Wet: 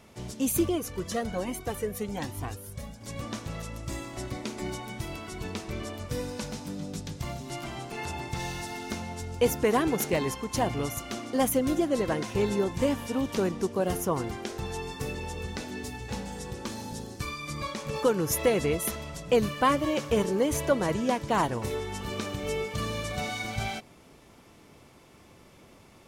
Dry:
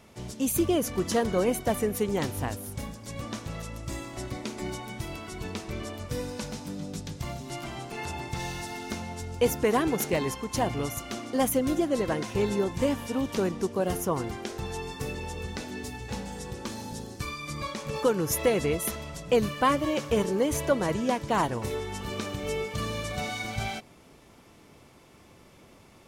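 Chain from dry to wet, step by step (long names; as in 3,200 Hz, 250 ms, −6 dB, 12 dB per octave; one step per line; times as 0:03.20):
0:00.69–0:03.01: flanger whose copies keep moving one way rising 1.2 Hz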